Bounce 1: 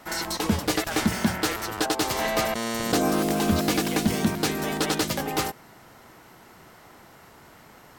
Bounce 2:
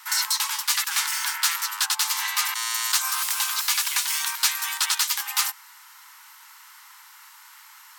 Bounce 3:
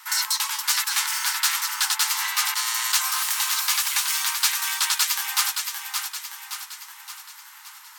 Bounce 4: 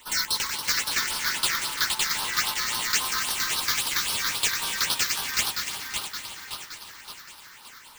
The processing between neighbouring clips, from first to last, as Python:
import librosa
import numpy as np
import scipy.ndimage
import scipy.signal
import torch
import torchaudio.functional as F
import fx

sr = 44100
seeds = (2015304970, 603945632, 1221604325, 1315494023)

y1 = scipy.signal.sosfilt(scipy.signal.butter(16, 870.0, 'highpass', fs=sr, output='sos'), x)
y1 = fx.rider(y1, sr, range_db=10, speed_s=0.5)
y1 = fx.high_shelf(y1, sr, hz=3200.0, db=10.0)
y2 = fx.echo_feedback(y1, sr, ms=570, feedback_pct=52, wet_db=-6.0)
y3 = fx.halfwave_hold(y2, sr)
y3 = fx.phaser_stages(y3, sr, stages=6, low_hz=710.0, high_hz=2100.0, hz=3.7, feedback_pct=5)
y3 = fx.echo_heads(y3, sr, ms=114, heads='second and third', feedback_pct=47, wet_db=-14)
y3 = y3 * 10.0 ** (-3.5 / 20.0)